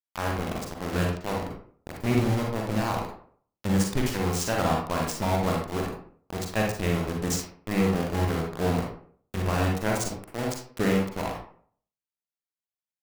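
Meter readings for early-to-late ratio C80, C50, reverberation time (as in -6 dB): 7.5 dB, 2.5 dB, 0.55 s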